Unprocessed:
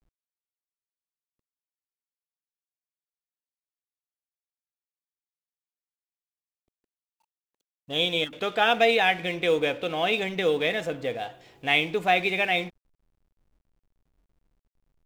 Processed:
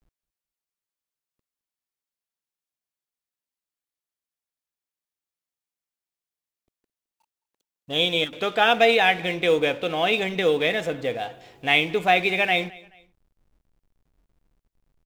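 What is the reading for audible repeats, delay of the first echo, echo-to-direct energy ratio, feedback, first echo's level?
2, 215 ms, −22.5 dB, 35%, −23.0 dB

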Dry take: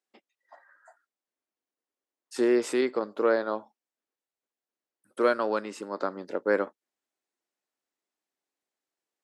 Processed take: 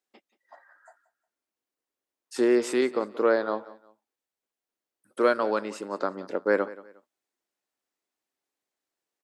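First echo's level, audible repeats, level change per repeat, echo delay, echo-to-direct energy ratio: −18.5 dB, 2, −11.0 dB, 179 ms, −18.0 dB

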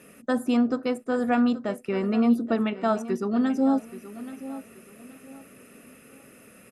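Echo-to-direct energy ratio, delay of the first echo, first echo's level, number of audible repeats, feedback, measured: −14.0 dB, 828 ms, −14.5 dB, 2, 30%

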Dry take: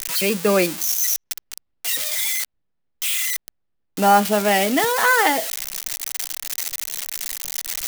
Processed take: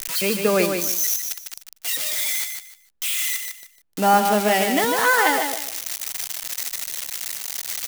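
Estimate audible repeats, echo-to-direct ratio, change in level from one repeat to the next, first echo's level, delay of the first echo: 3, −5.5 dB, −12.5 dB, −6.0 dB, 151 ms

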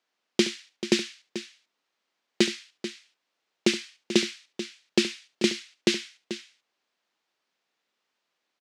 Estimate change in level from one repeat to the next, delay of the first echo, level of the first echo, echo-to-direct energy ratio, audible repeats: repeats not evenly spaced, 72 ms, −14.5 dB, −10.0 dB, 2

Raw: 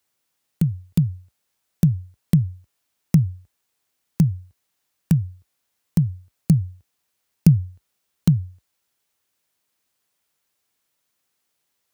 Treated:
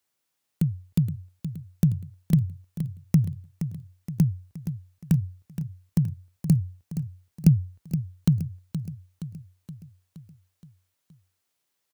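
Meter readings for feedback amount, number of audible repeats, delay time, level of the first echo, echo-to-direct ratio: 56%, 5, 471 ms, −10.5 dB, −9.0 dB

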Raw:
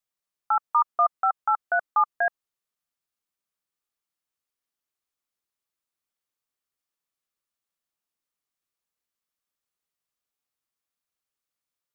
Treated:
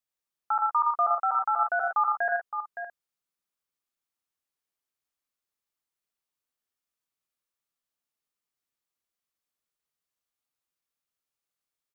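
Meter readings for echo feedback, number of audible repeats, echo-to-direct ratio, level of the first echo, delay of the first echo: repeats not evenly spaced, 4, −1.0 dB, −6.0 dB, 84 ms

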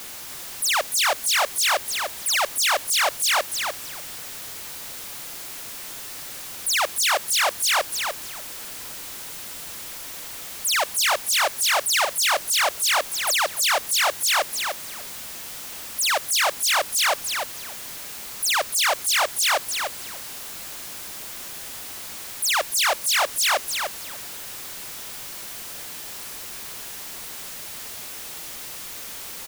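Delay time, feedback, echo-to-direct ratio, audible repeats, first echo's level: 297 ms, 17%, −5.5 dB, 2, −5.5 dB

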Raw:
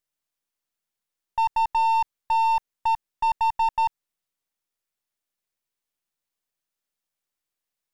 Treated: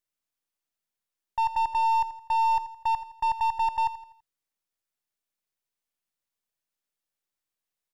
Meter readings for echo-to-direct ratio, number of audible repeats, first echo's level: −13.0 dB, 3, −14.0 dB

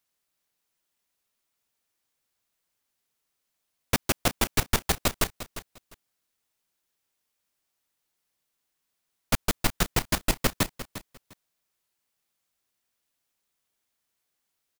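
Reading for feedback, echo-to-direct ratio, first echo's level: 19%, −13.5 dB, −13.5 dB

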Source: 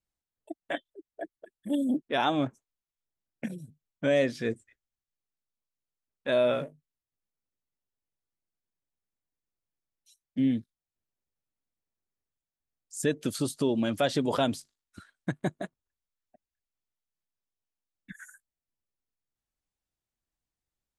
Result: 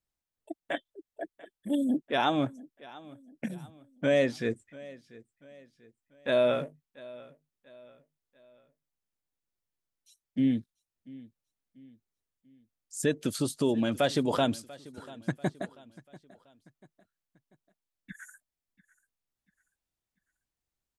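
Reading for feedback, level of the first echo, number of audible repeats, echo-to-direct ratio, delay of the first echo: 42%, −20.5 dB, 2, −19.5 dB, 690 ms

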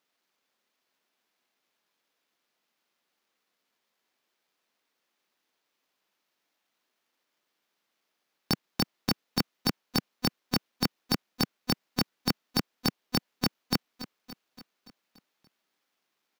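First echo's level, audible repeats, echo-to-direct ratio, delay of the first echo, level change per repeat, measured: −14.5 dB, 5, −12.5 dB, 286 ms, −4.5 dB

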